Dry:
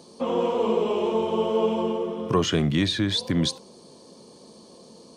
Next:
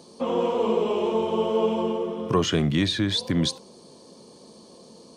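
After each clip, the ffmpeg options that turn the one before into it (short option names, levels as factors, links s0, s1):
-af anull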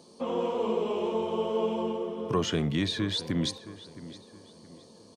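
-filter_complex "[0:a]asplit=2[s0][s1];[s1]adelay=668,lowpass=f=3800:p=1,volume=0.168,asplit=2[s2][s3];[s3]adelay=668,lowpass=f=3800:p=1,volume=0.37,asplit=2[s4][s5];[s5]adelay=668,lowpass=f=3800:p=1,volume=0.37[s6];[s0][s2][s4][s6]amix=inputs=4:normalize=0,volume=0.531"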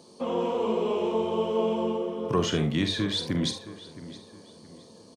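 -af "aecho=1:1:45|75:0.355|0.211,volume=1.19"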